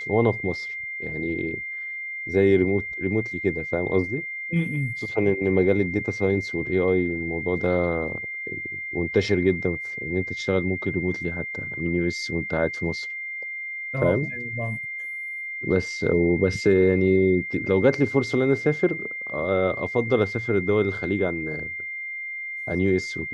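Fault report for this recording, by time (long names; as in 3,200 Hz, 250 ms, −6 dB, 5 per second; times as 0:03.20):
whistle 2,100 Hz −30 dBFS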